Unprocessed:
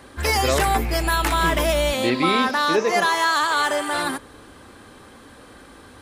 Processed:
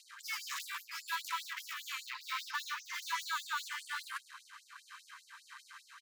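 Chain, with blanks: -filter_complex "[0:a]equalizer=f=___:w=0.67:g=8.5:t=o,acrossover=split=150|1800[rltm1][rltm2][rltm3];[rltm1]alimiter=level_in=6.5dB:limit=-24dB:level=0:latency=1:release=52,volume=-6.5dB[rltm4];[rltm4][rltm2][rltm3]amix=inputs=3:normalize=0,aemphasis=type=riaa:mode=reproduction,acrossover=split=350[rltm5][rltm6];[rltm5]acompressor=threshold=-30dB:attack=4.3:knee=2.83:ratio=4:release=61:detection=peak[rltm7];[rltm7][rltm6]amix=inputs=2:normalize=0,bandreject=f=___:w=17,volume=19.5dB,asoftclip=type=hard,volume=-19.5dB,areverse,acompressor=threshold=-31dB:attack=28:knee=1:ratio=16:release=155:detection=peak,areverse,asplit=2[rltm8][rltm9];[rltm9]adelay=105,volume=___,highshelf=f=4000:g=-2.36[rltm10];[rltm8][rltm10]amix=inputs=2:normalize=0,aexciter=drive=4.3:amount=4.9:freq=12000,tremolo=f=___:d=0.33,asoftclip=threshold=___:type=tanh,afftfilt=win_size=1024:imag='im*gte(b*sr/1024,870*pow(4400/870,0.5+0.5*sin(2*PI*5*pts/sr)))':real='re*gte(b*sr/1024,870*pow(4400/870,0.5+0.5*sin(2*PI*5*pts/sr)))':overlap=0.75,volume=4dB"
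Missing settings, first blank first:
6600, 3400, -18dB, 1.6, -32.5dB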